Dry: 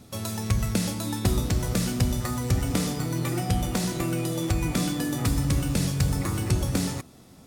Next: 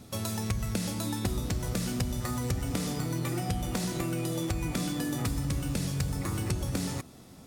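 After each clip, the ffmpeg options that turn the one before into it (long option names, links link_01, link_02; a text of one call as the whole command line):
ffmpeg -i in.wav -af "acompressor=threshold=-29dB:ratio=3" out.wav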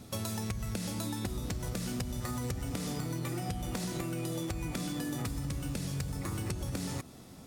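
ffmpeg -i in.wav -af "acompressor=threshold=-32dB:ratio=6" out.wav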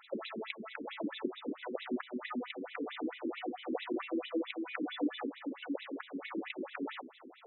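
ffmpeg -i in.wav -af "afftfilt=real='re*between(b*sr/1024,300*pow(2900/300,0.5+0.5*sin(2*PI*4.5*pts/sr))/1.41,300*pow(2900/300,0.5+0.5*sin(2*PI*4.5*pts/sr))*1.41)':imag='im*between(b*sr/1024,300*pow(2900/300,0.5+0.5*sin(2*PI*4.5*pts/sr))/1.41,300*pow(2900/300,0.5+0.5*sin(2*PI*4.5*pts/sr))*1.41)':win_size=1024:overlap=0.75,volume=8.5dB" out.wav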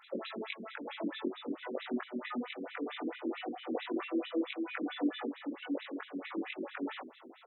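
ffmpeg -i in.wav -filter_complex "[0:a]asplit=2[link_01][link_02];[link_02]adelay=21,volume=-2.5dB[link_03];[link_01][link_03]amix=inputs=2:normalize=0,volume=-1.5dB" out.wav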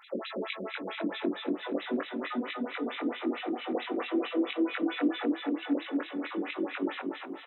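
ffmpeg -i in.wav -af "aecho=1:1:238|476|714|952|1190|1428|1666:0.668|0.341|0.174|0.0887|0.0452|0.0231|0.0118,volume=3.5dB" out.wav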